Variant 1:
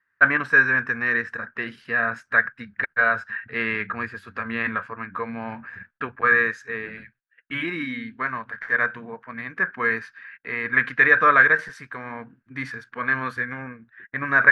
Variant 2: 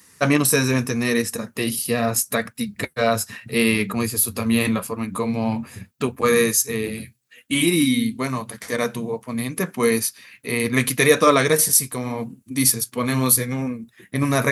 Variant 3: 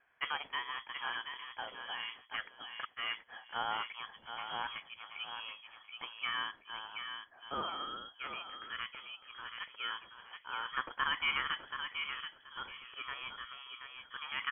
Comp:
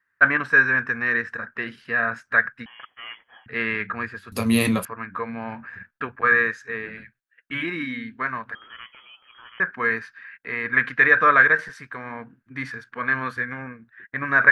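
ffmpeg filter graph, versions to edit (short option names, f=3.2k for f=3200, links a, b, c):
-filter_complex "[2:a]asplit=2[a][b];[0:a]asplit=4[c][d][e][f];[c]atrim=end=2.662[g];[a]atrim=start=2.658:end=3.462[h];[d]atrim=start=3.458:end=4.322[i];[1:a]atrim=start=4.318:end=4.852[j];[e]atrim=start=4.848:end=8.552[k];[b]atrim=start=8.548:end=9.602[l];[f]atrim=start=9.598[m];[g][h]acrossfade=d=0.004:c1=hsin:c2=hsin[n];[n][i]acrossfade=d=0.004:c1=hsin:c2=hsin[o];[o][j]acrossfade=d=0.004:c1=hsin:c2=hsin[p];[p][k]acrossfade=d=0.004:c1=hsin:c2=hsin[q];[q][l]acrossfade=d=0.004:c1=hsin:c2=hsin[r];[r][m]acrossfade=d=0.004:c1=hsin:c2=hsin"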